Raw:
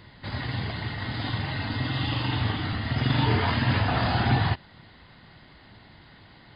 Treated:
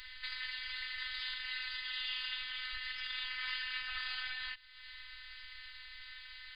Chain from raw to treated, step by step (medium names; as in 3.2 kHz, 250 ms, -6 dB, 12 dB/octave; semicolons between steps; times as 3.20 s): compression 2.5:1, threshold -41 dBFS, peak gain reduction 15.5 dB; inverse Chebyshev band-stop 160–510 Hz, stop band 70 dB; robot voice 255 Hz; trim +8.5 dB